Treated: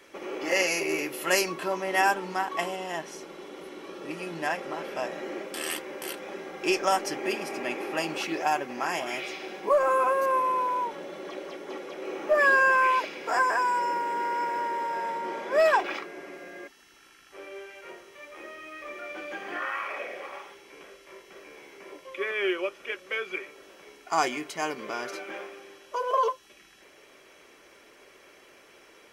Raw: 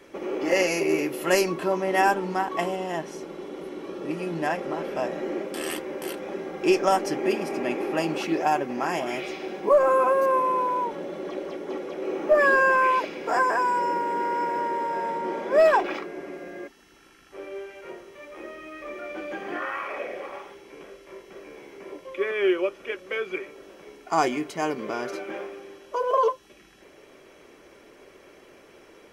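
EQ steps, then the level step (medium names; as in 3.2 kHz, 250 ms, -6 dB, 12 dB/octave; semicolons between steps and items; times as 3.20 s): tilt shelf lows -5.5 dB, about 720 Hz; -3.5 dB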